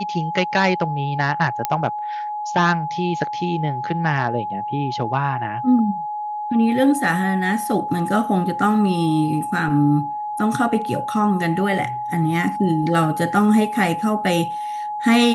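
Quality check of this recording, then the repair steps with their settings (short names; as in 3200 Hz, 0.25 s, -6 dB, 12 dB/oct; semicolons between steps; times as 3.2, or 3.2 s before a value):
tone 840 Hz -24 dBFS
1.65 pop -5 dBFS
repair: de-click; notch 840 Hz, Q 30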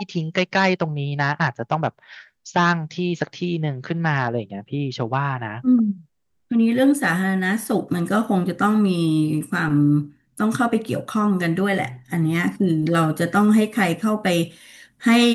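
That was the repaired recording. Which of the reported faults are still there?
none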